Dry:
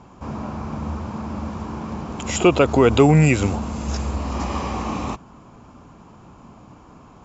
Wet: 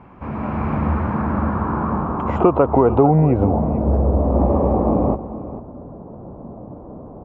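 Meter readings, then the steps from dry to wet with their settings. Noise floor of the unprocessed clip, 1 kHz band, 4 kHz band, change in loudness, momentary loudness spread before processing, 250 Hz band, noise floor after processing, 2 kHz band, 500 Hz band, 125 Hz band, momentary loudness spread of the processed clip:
−47 dBFS, +5.0 dB, below −20 dB, +2.5 dB, 16 LU, +3.0 dB, −38 dBFS, −7.0 dB, +2.5 dB, +2.5 dB, 22 LU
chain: low-pass filter sweep 2,200 Hz → 580 Hz, 0:00.65–0:03.96
downward compressor 3 to 1, threshold −17 dBFS, peak gain reduction 8.5 dB
on a send: single-tap delay 448 ms −14 dB
on the sum: automatic gain control gain up to 7 dB
high-shelf EQ 2,400 Hz −10.5 dB
level +1.5 dB

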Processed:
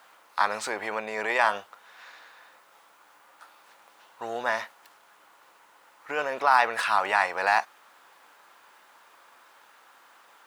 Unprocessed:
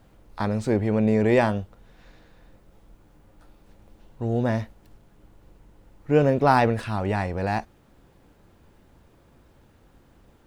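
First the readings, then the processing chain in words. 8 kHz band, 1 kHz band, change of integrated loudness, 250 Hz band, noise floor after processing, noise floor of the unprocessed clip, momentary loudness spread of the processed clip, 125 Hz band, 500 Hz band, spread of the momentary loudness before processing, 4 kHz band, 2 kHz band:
can't be measured, +2.0 dB, −2.5 dB, −21.0 dB, −58 dBFS, −58 dBFS, 14 LU, below −30 dB, −8.0 dB, 12 LU, +4.5 dB, +6.0 dB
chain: brickwall limiter −17.5 dBFS, peak gain reduction 11.5 dB
high-pass with resonance 1,100 Hz, resonance Q 1.6
level +8 dB

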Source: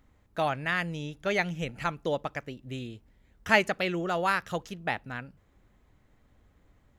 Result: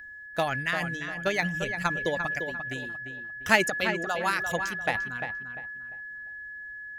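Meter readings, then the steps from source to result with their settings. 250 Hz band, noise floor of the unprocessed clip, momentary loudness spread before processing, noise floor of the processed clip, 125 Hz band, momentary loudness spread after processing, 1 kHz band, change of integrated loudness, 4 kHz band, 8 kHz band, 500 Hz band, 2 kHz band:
0.0 dB, −66 dBFS, 15 LU, −43 dBFS, −0.5 dB, 14 LU, +0.5 dB, +1.0 dB, +2.0 dB, +8.0 dB, 0.0 dB, +4.5 dB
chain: reverb reduction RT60 1.1 s
steady tone 1,700 Hz −39 dBFS
transient designer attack +7 dB, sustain +11 dB
in parallel at −7.5 dB: gain into a clipping stage and back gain 16 dB
on the sum: high-shelf EQ 4,400 Hz +8.5 dB
on a send: feedback echo with a low-pass in the loop 347 ms, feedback 32%, low-pass 2,600 Hz, level −7.5 dB
on the sum: level −6.5 dB

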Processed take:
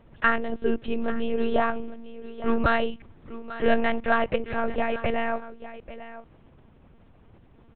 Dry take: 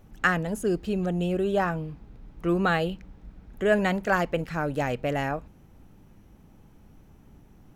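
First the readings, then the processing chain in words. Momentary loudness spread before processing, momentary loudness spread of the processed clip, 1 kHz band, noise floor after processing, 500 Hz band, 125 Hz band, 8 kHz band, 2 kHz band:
9 LU, 18 LU, +2.0 dB, −55 dBFS, +0.5 dB, −9.0 dB, below −30 dB, +0.5 dB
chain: low-shelf EQ 91 Hz −12 dB
soft clipping −13.5 dBFS, distortion −21 dB
on a send: single-tap delay 844 ms −14.5 dB
on the sum: one-pitch LPC vocoder at 8 kHz 230 Hz
level +3.5 dB

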